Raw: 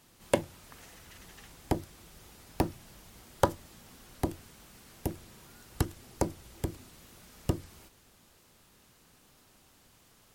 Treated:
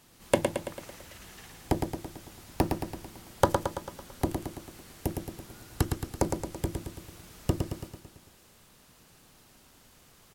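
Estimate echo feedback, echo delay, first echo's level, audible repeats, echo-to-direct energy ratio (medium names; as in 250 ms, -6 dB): 56%, 111 ms, -5.0 dB, 6, -3.5 dB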